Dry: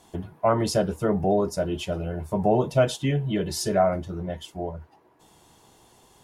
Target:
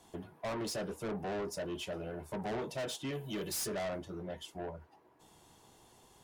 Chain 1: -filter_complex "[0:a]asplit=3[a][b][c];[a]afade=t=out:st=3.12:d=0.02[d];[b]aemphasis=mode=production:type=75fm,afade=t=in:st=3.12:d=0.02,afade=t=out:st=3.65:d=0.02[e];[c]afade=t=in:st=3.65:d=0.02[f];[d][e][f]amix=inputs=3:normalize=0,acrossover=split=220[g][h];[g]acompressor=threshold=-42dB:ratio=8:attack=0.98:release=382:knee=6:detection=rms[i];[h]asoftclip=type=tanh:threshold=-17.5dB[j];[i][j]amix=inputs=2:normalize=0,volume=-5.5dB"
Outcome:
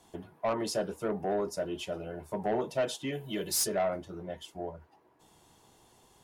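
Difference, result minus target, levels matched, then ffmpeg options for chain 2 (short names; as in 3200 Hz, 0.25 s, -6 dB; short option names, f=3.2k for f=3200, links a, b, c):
soft clip: distortion -9 dB
-filter_complex "[0:a]asplit=3[a][b][c];[a]afade=t=out:st=3.12:d=0.02[d];[b]aemphasis=mode=production:type=75fm,afade=t=in:st=3.12:d=0.02,afade=t=out:st=3.65:d=0.02[e];[c]afade=t=in:st=3.65:d=0.02[f];[d][e][f]amix=inputs=3:normalize=0,acrossover=split=220[g][h];[g]acompressor=threshold=-42dB:ratio=8:attack=0.98:release=382:knee=6:detection=rms[i];[h]asoftclip=type=tanh:threshold=-29.5dB[j];[i][j]amix=inputs=2:normalize=0,volume=-5.5dB"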